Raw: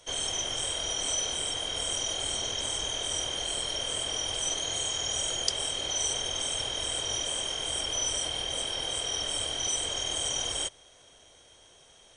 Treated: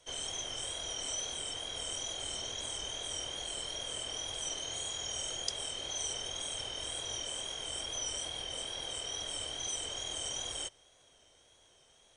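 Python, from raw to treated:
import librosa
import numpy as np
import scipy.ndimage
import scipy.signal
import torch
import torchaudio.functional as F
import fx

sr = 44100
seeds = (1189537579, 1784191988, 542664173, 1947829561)

y = fx.wow_flutter(x, sr, seeds[0], rate_hz=2.1, depth_cents=40.0)
y = F.gain(torch.from_numpy(y), -7.5).numpy()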